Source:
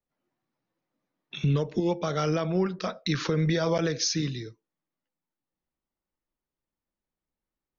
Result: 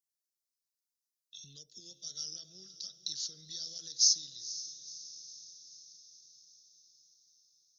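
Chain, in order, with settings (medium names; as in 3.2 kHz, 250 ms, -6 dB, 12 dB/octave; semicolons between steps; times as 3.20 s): inverse Chebyshev high-pass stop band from 2.5 kHz, stop band 40 dB; echo that smears into a reverb 498 ms, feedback 59%, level -14 dB; trim +5 dB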